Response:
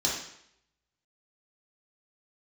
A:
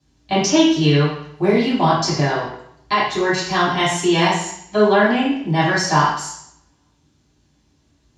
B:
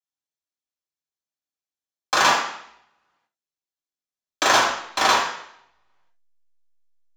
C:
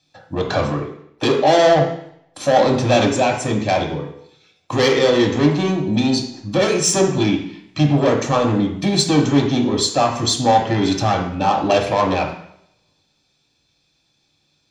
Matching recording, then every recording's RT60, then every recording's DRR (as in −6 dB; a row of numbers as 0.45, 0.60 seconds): B; 0.70, 0.70, 0.70 seconds; −9.5, −5.0, 1.5 decibels